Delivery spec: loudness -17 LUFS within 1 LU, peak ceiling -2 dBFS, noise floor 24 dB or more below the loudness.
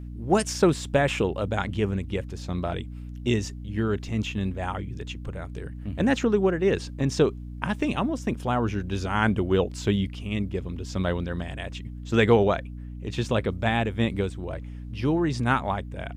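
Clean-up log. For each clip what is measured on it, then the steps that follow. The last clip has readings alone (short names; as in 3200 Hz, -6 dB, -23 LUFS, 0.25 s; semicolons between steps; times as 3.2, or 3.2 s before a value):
hum 60 Hz; harmonics up to 300 Hz; hum level -35 dBFS; loudness -26.5 LUFS; peak -6.5 dBFS; loudness target -17.0 LUFS
-> de-hum 60 Hz, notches 5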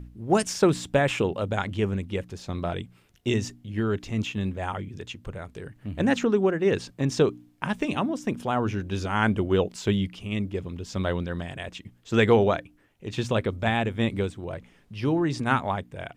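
hum none; loudness -26.5 LUFS; peak -7.0 dBFS; loudness target -17.0 LUFS
-> gain +9.5 dB; limiter -2 dBFS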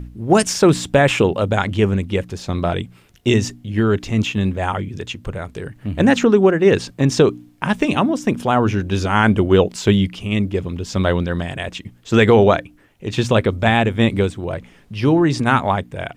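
loudness -17.5 LUFS; peak -2.0 dBFS; noise floor -50 dBFS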